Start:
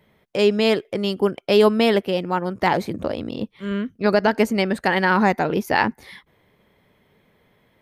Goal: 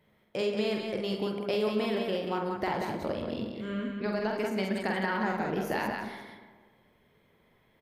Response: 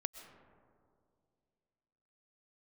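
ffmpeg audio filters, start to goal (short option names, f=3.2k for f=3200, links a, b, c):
-filter_complex "[0:a]acompressor=threshold=-20dB:ratio=6,aecho=1:1:46.65|183.7:0.631|0.562[a];[1:a]atrim=start_sample=2205,asetrate=74970,aresample=44100[b];[a][b]afir=irnorm=-1:irlink=0,volume=-2dB"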